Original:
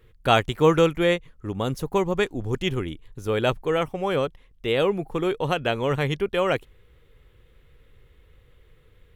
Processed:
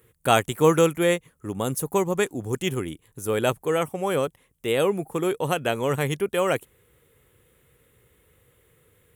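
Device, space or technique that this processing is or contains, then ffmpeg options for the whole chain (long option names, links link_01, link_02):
budget condenser microphone: -af "highpass=110,highshelf=frequency=6400:width_type=q:width=1.5:gain=12.5"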